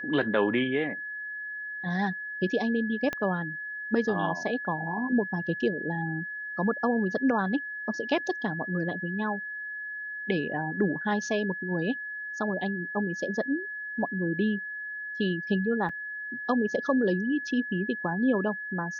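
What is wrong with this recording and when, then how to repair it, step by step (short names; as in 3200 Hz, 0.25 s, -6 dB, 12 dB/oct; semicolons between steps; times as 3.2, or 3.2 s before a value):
tone 1700 Hz -34 dBFS
3.13 pop -17 dBFS
15.89 gap 4.8 ms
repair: de-click; notch 1700 Hz, Q 30; interpolate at 15.89, 4.8 ms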